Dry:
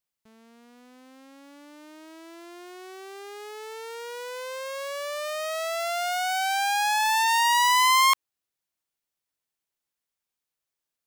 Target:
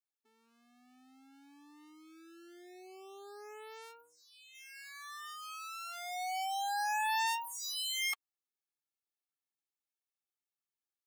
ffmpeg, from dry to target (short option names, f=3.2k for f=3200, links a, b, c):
-filter_complex "[0:a]asplit=3[a][b][c];[a]afade=t=out:st=4:d=0.02[d];[b]lowpass=f=3.3k:p=1,afade=t=in:st=4:d=0.02,afade=t=out:st=4.54:d=0.02[e];[c]afade=t=in:st=4.54:d=0.02[f];[d][e][f]amix=inputs=3:normalize=0,afftfilt=real='re*eq(mod(floor(b*sr/1024/230),2),1)':imag='im*eq(mod(floor(b*sr/1024/230),2),1)':win_size=1024:overlap=0.75,volume=-9dB"